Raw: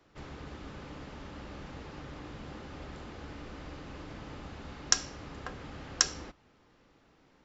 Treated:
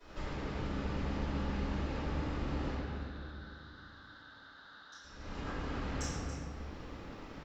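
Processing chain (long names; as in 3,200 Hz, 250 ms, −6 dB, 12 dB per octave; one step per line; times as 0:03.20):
downward compressor 12 to 1, threshold −51 dBFS, peak gain reduction 32.5 dB
0:02.71–0:05.02: pair of resonant band-passes 2,400 Hz, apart 1.3 octaves
single-tap delay 281 ms −11.5 dB
convolution reverb RT60 2.4 s, pre-delay 3 ms, DRR −19.5 dB
level −4.5 dB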